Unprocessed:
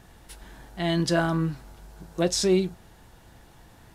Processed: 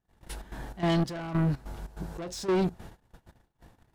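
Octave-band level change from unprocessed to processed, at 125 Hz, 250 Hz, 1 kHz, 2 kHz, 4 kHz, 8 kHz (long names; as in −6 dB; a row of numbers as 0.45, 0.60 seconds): −1.0, −3.5, −2.5, −7.0, −9.0, −12.5 decibels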